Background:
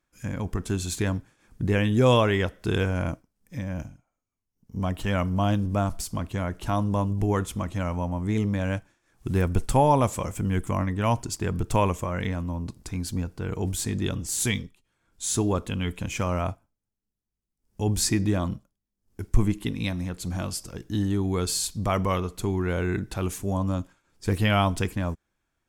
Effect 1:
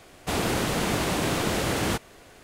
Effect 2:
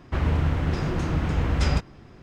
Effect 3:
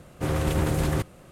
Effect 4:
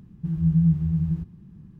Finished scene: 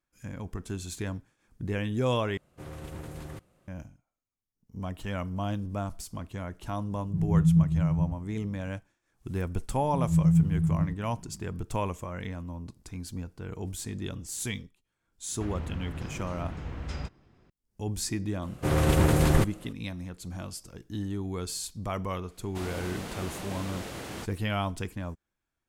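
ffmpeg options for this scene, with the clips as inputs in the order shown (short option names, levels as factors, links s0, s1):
-filter_complex "[3:a]asplit=2[s0][s1];[4:a]asplit=2[s2][s3];[0:a]volume=0.398[s4];[s2]lowshelf=f=360:g=12[s5];[s1]dynaudnorm=f=120:g=5:m=1.5[s6];[s4]asplit=2[s7][s8];[s7]atrim=end=2.374[s9];[s0]atrim=end=1.31,asetpts=PTS-STARTPTS,volume=0.15[s10];[s8]atrim=start=3.676[s11];[s5]atrim=end=1.79,asetpts=PTS-STARTPTS,volume=0.251,afade=t=in:d=0.004:c=hsin,afade=t=out:st=1.786:d=0.004:c=hsin,adelay=304290S[s12];[s3]atrim=end=1.79,asetpts=PTS-STARTPTS,volume=0.75,afade=t=in:d=0.004:c=hsin,afade=t=out:st=1.786:d=0.004:c=hsin,adelay=427770S[s13];[2:a]atrim=end=2.22,asetpts=PTS-STARTPTS,volume=0.211,afade=t=in:d=0.004:c=hsin,afade=t=out:st=2.216:d=0.004:c=hsin,adelay=15280[s14];[s6]atrim=end=1.31,asetpts=PTS-STARTPTS,volume=0.891,afade=t=in:d=0.004:c=hsin,afade=t=out:st=1.306:d=0.004:c=hsin,adelay=18420[s15];[1:a]atrim=end=2.43,asetpts=PTS-STARTPTS,volume=0.224,afade=t=in:d=0.004:c=hsin,afade=t=out:st=2.426:d=0.004:c=hsin,adelay=982548S[s16];[s9][s10]acrossfade=d=0.004:c1=hsin:c2=hsin[s17];[s17][s11]acrossfade=d=0.004:c1=hsin:c2=hsin[s18];[s18][s12][s13][s14][s15][s16]amix=inputs=6:normalize=0"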